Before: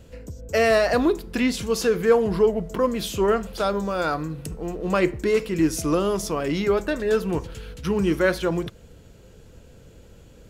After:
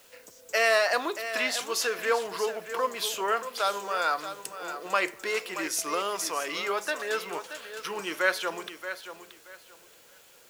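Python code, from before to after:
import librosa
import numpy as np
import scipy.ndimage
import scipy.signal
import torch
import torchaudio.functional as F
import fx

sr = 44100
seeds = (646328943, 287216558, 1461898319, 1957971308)

y = scipy.signal.sosfilt(scipy.signal.butter(2, 870.0, 'highpass', fs=sr, output='sos'), x)
y = fx.quant_dither(y, sr, seeds[0], bits=10, dither='triangular')
y = fx.echo_feedback(y, sr, ms=628, feedback_pct=22, wet_db=-11)
y = y * librosa.db_to_amplitude(1.0)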